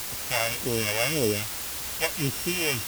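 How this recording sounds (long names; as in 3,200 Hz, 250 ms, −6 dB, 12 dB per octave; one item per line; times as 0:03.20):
a buzz of ramps at a fixed pitch in blocks of 16 samples
phaser sweep stages 2, 1.8 Hz, lowest notch 230–1,700 Hz
a quantiser's noise floor 6 bits, dither triangular
AC-3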